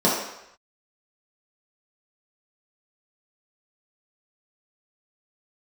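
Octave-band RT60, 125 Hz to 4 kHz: 0.60 s, 0.65 s, 0.80 s, 0.85 s, 0.90 s, 0.80 s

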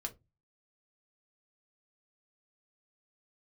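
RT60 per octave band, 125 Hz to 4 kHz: 0.50 s, 0.30 s, 0.20 s, 0.20 s, 0.15 s, 0.15 s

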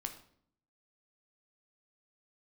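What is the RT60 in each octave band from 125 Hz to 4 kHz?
0.90 s, 0.85 s, 0.65 s, 0.55 s, 0.50 s, 0.45 s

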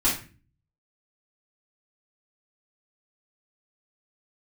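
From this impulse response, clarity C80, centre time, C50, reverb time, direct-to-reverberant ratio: 11.5 dB, 33 ms, 5.5 dB, 0.35 s, -8.0 dB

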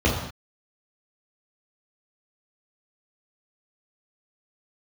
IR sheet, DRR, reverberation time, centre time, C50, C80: -5.5 dB, no single decay rate, 44 ms, 3.5 dB, 6.5 dB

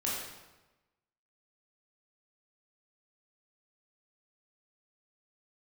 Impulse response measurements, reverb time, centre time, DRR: 1.1 s, 74 ms, -6.0 dB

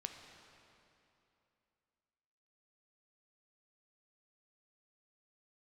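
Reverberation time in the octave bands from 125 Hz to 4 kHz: 2.9 s, 3.0 s, 2.9 s, 2.8 s, 2.6 s, 2.3 s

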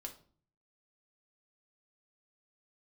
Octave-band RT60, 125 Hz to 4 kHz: 0.75 s, 0.65 s, 0.50 s, 0.45 s, 0.35 s, 0.35 s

